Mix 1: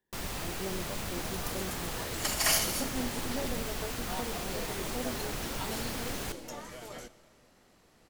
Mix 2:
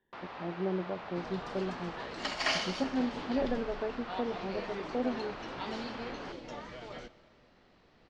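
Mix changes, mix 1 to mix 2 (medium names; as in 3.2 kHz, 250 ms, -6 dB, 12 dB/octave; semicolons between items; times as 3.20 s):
speech +6.0 dB; first sound: add band-pass filter 960 Hz, Q 1; master: add low-pass 4.5 kHz 24 dB/octave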